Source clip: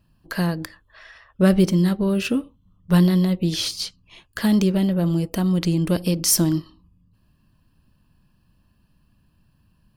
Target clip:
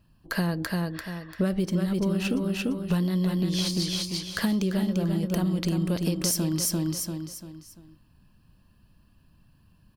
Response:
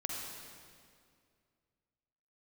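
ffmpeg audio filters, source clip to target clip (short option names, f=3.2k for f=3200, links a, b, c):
-af "aecho=1:1:343|686|1029|1372:0.562|0.197|0.0689|0.0241,acompressor=threshold=-22dB:ratio=12"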